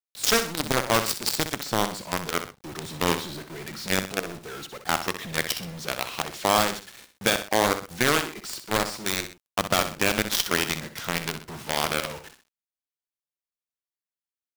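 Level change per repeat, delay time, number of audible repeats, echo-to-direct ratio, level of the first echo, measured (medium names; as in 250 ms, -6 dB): -7.5 dB, 63 ms, 2, -9.5 dB, -10.0 dB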